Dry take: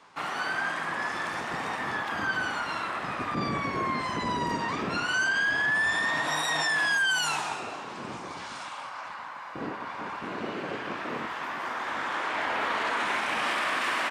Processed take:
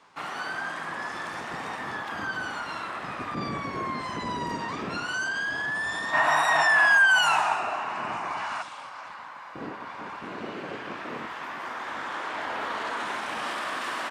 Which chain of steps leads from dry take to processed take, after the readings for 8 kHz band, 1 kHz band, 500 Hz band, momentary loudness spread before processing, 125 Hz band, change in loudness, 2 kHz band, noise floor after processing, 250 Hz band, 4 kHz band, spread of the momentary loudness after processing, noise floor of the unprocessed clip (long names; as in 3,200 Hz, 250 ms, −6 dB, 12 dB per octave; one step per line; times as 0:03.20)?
−2.0 dB, +2.0 dB, +0.5 dB, 14 LU, −2.0 dB, +2.0 dB, +2.0 dB, −41 dBFS, −2.0 dB, −1.0 dB, 17 LU, −40 dBFS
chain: gain on a spectral selection 0:06.14–0:08.62, 600–3,000 Hz +11 dB
dynamic equaliser 2,300 Hz, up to −6 dB, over −37 dBFS, Q 2.1
level −2 dB